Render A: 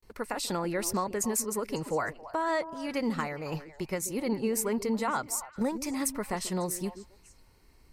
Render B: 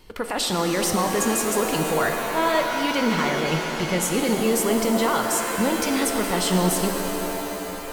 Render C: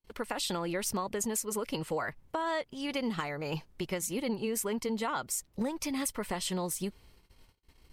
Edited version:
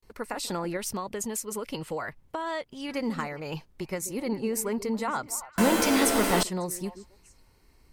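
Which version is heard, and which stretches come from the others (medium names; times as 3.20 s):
A
0.77–2.89 s: from C
3.40–3.80 s: from C
5.58–6.43 s: from B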